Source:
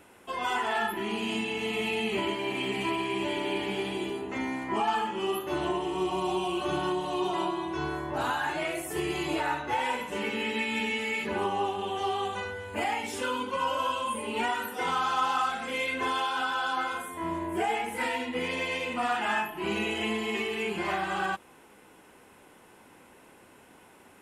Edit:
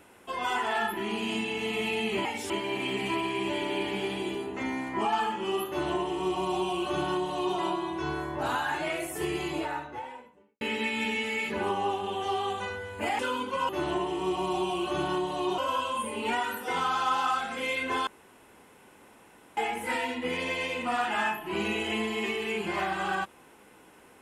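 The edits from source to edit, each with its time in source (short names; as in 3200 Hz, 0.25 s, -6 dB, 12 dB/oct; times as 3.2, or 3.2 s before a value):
5.43–7.32 copy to 13.69
8.94–10.36 studio fade out
12.94–13.19 move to 2.25
16.18–17.68 room tone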